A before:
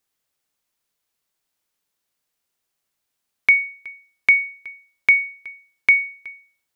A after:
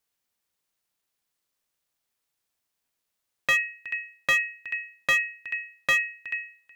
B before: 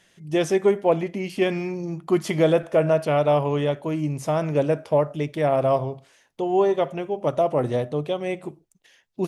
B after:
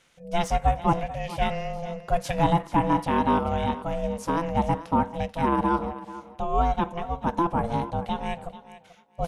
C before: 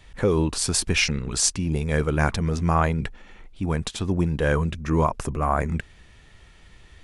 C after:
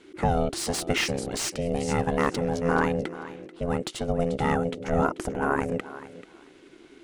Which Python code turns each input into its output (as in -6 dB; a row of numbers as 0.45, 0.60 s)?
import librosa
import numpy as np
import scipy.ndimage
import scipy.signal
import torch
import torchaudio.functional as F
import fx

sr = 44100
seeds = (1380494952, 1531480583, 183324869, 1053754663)

y = x * np.sin(2.0 * np.pi * 340.0 * np.arange(len(x)) / sr)
y = fx.echo_thinned(y, sr, ms=437, feedback_pct=18, hz=150.0, wet_db=-15.0)
y = fx.slew_limit(y, sr, full_power_hz=270.0)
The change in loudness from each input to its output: -9.0, -3.5, -3.5 LU